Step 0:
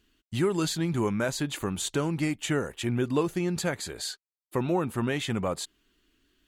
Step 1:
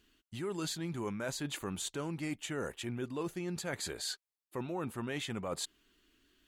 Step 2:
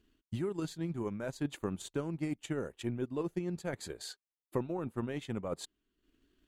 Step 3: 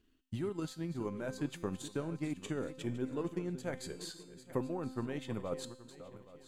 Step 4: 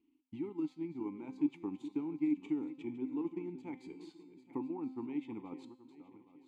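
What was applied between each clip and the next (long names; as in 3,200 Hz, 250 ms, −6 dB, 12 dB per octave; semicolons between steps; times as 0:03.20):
low-shelf EQ 220 Hz −4 dB; reversed playback; downward compressor, threshold −35 dBFS, peak gain reduction 13 dB; reversed playback
transient designer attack +9 dB, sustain −9 dB; tilt shelving filter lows +5.5 dB, about 850 Hz; level −4 dB
feedback delay that plays each chunk backwards 412 ms, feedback 55%, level −13 dB; tuned comb filter 260 Hz, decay 0.8 s, mix 70%; level +8 dB
formant filter u; level +8 dB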